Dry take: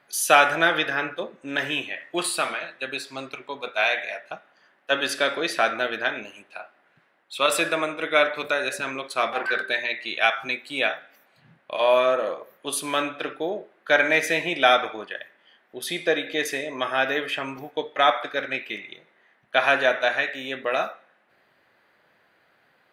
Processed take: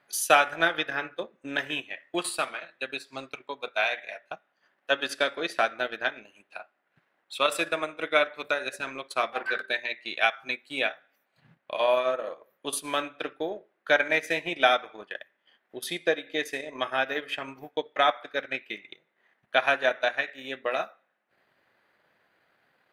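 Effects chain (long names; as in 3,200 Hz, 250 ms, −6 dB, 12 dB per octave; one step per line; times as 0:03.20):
transient designer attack +4 dB, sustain −9 dB
level −5.5 dB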